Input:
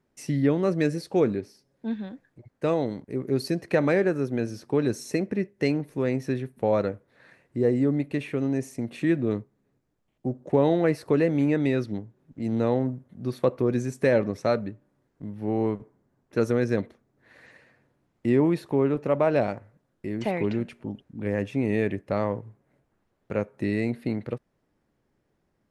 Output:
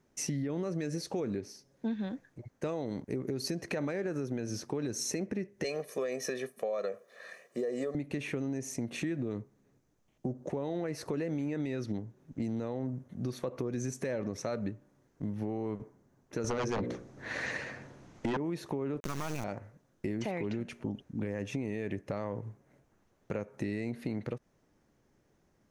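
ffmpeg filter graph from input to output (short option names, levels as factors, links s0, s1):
-filter_complex "[0:a]asettb=1/sr,asplit=3[s0][s1][s2];[s0]atrim=end=5.644[s3];[s1]atrim=start=5.64:end=7.95,asetpts=PTS-STARTPTS,afade=t=in:d=0.004:c=qsin,afade=t=out:st=2.306:d=0.004:c=qsin,highpass=f=250:w=0.5412,highpass=f=250:w=1.3066,highshelf=f=8800:g=6,aecho=1:1:1.7:0.89,atrim=end_sample=101871[s4];[s2]atrim=start=7.946[s5];[s3][s4]acrossfade=d=0.004:c1=hsin:c2=qsin[s6];[s6][s5]acrossfade=d=0.004:c1=qsin:c2=hsin,asettb=1/sr,asplit=3[s7][s8][s9];[s7]atrim=end=16.444[s10];[s8]atrim=start=16.44:end=18.37,asetpts=PTS-STARTPTS,afade=t=in:d=0.004:c=qsin,afade=t=out:st=1.926:d=0.004:c=qsin,lowpass=7600,bandreject=f=60:t=h:w=6,bandreject=f=120:t=h:w=6,bandreject=f=180:t=h:w=6,bandreject=f=240:t=h:w=6,bandreject=f=300:t=h:w=6,bandreject=f=360:t=h:w=6,bandreject=f=420:t=h:w=6,bandreject=f=480:t=h:w=6,bandreject=f=540:t=h:w=6,aeval=exprs='0.282*sin(PI/2*3.55*val(0)/0.282)':c=same[s11];[s9]atrim=start=18.366[s12];[s10][s11]acrossfade=d=0.004:c1=hsin:c2=qsin[s13];[s13][s12]acrossfade=d=0.004:c1=qsin:c2=hsin,asettb=1/sr,asplit=3[s14][s15][s16];[s14]atrim=end=19.004[s17];[s15]atrim=start=19:end=19.44,asetpts=PTS-STARTPTS,afade=t=in:d=0.004:c=qsin,afade=t=out:st=0.436:d=0.004:c=qsin,aecho=1:1:0.9:0.82,atrim=end_sample=19404,acrusher=bits=3:dc=4:mix=0:aa=0.000001[s18];[s16]atrim=start=19.436[s19];[s17][s18]acrossfade=d=0.004:c1=hsin:c2=qsin[s20];[s20][s19]acrossfade=d=0.004:c1=qsin:c2=hsin,equalizer=f=6200:t=o:w=0.34:g=9,alimiter=limit=0.0668:level=0:latency=1:release=121,acompressor=threshold=0.0224:ratio=6,volume=1.33"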